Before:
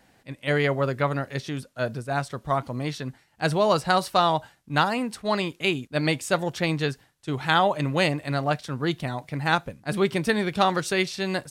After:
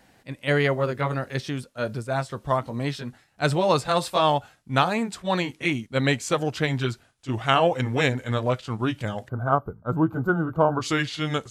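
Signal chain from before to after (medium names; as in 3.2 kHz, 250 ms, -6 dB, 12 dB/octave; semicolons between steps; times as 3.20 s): pitch bend over the whole clip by -4 st starting unshifted; time-frequency box 9.28–10.81 s, 1.6–12 kHz -27 dB; trim +2 dB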